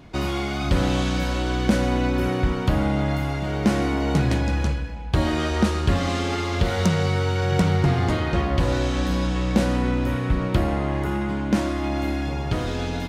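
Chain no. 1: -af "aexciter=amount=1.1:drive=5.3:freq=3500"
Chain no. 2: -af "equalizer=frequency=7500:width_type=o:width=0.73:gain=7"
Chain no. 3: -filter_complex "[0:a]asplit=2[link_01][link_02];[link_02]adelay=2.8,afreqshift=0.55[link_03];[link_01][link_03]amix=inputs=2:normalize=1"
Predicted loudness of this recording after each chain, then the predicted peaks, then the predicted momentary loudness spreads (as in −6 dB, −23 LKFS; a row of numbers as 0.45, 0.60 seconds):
−23.0, −23.0, −26.0 LKFS; −8.5, −7.0, −8.0 dBFS; 5, 5, 5 LU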